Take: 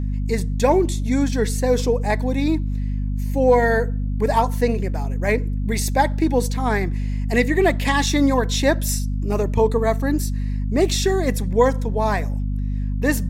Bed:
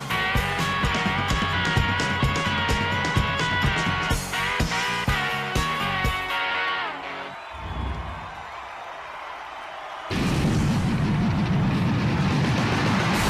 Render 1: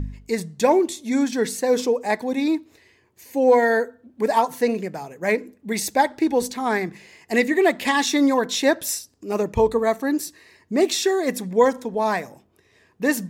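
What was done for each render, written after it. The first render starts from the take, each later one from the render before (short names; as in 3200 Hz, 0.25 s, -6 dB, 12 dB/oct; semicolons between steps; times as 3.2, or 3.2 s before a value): de-hum 50 Hz, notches 5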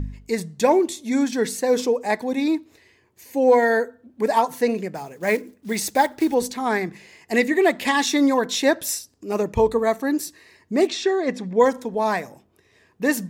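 4.95–6.35 block floating point 5-bit; 10.87–11.6 air absorption 120 m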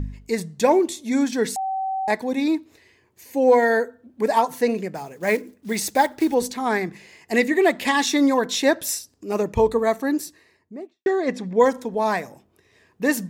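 1.56–2.08 bleep 767 Hz -22.5 dBFS; 10.03–11.06 studio fade out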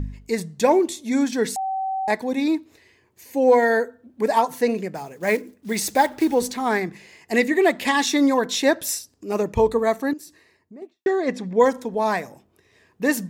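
5.76–6.8 G.711 law mismatch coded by mu; 10.13–10.82 compressor 2.5:1, threshold -41 dBFS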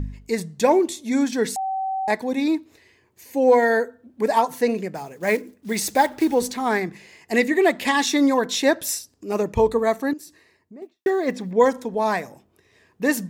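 10.82–11.52 block floating point 7-bit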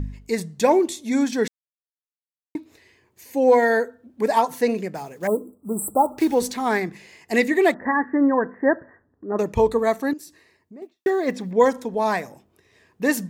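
1.48–2.55 mute; 5.27–6.18 brick-wall FIR band-stop 1400–7500 Hz; 7.74–9.39 Chebyshev low-pass 1900 Hz, order 8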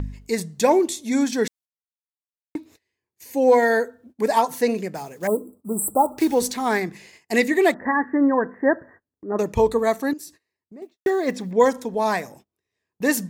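gate -47 dBFS, range -24 dB; tone controls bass 0 dB, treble +4 dB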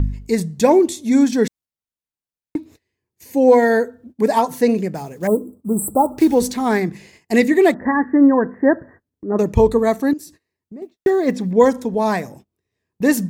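low shelf 370 Hz +11 dB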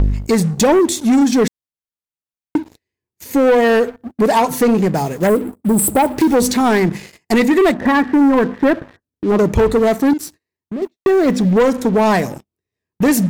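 compressor 2:1, threshold -20 dBFS, peak gain reduction 7.5 dB; sample leveller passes 3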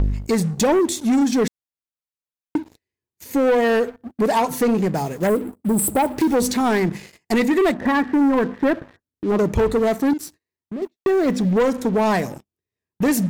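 gain -5 dB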